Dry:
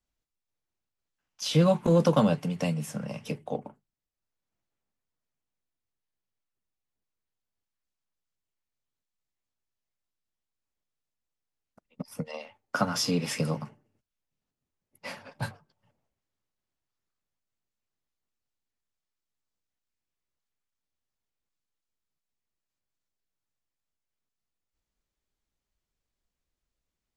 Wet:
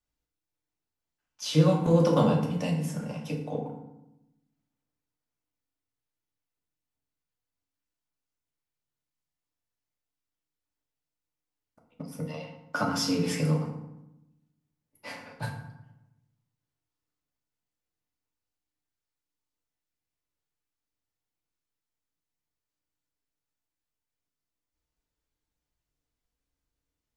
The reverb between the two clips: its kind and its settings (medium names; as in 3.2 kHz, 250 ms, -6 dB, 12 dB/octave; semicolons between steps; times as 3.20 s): FDN reverb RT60 0.9 s, low-frequency decay 1.4×, high-frequency decay 0.6×, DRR -0.5 dB; trim -4 dB